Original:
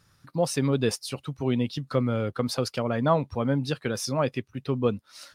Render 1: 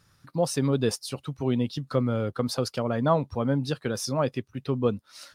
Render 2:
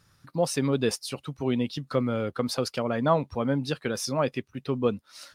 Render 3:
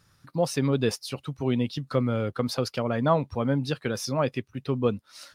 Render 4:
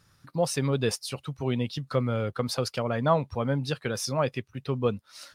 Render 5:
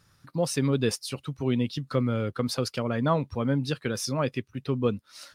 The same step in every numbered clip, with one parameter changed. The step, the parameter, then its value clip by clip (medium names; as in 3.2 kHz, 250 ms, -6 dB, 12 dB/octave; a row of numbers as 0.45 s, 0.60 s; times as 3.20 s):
dynamic bell, frequency: 2.3 kHz, 110 Hz, 8.5 kHz, 280 Hz, 740 Hz